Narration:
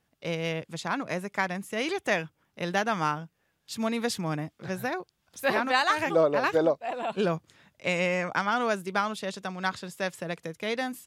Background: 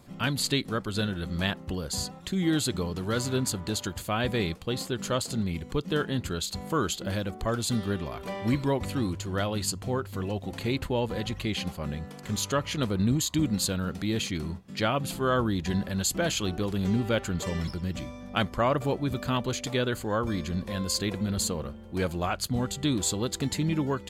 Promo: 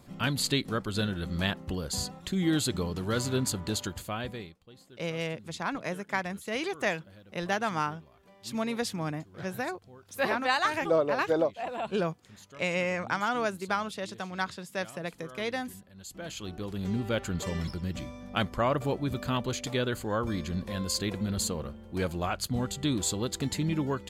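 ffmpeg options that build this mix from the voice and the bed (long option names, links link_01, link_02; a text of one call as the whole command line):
ffmpeg -i stem1.wav -i stem2.wav -filter_complex "[0:a]adelay=4750,volume=-2.5dB[link_01];[1:a]volume=20dB,afade=type=out:start_time=3.77:duration=0.77:silence=0.0794328,afade=type=in:start_time=15.94:duration=1.41:silence=0.0891251[link_02];[link_01][link_02]amix=inputs=2:normalize=0" out.wav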